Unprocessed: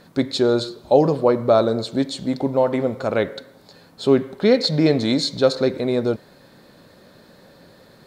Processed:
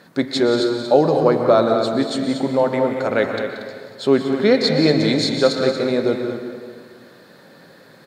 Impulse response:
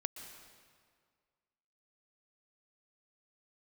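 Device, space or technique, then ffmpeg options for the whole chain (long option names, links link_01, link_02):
stadium PA: -filter_complex "[0:a]highpass=140,equalizer=frequency=1700:width_type=o:width=0.76:gain=5,aecho=1:1:180.8|233.2:0.282|0.316[link_01];[1:a]atrim=start_sample=2205[link_02];[link_01][link_02]afir=irnorm=-1:irlink=0,volume=2dB"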